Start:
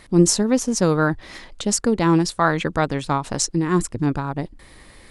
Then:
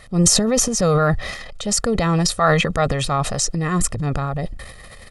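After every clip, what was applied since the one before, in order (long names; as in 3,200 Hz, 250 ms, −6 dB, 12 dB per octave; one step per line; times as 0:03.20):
comb filter 1.6 ms, depth 76%
transient designer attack −3 dB, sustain +10 dB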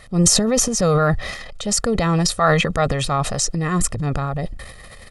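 no processing that can be heard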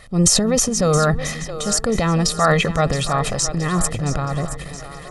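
echo with a time of its own for lows and highs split 300 Hz, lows 294 ms, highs 671 ms, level −12 dB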